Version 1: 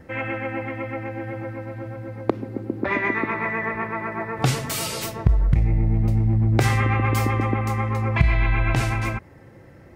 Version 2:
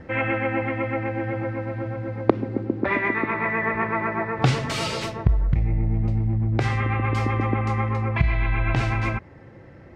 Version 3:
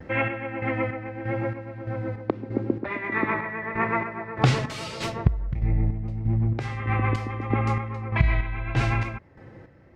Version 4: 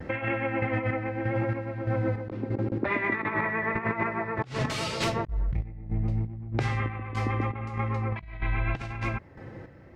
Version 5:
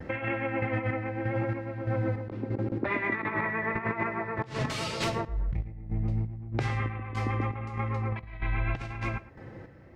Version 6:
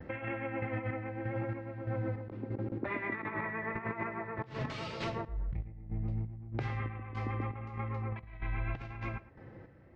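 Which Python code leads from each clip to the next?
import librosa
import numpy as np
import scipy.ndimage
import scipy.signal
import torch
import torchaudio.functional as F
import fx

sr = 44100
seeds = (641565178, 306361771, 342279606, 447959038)

y1 = scipy.signal.sosfilt(scipy.signal.butter(2, 4400.0, 'lowpass', fs=sr, output='sos'), x)
y1 = fx.rider(y1, sr, range_db=4, speed_s=0.5)
y2 = fx.chopper(y1, sr, hz=1.6, depth_pct=60, duty_pct=45)
y2 = fx.vibrato(y2, sr, rate_hz=0.81, depth_cents=32.0)
y3 = fx.over_compress(y2, sr, threshold_db=-28.0, ratio=-0.5)
y4 = y3 + 10.0 ** (-17.5 / 20.0) * np.pad(y3, (int(110 * sr / 1000.0), 0))[:len(y3)]
y4 = y4 * 10.0 ** (-2.0 / 20.0)
y5 = fx.air_absorb(y4, sr, metres=150.0)
y5 = y5 * 10.0 ** (-6.0 / 20.0)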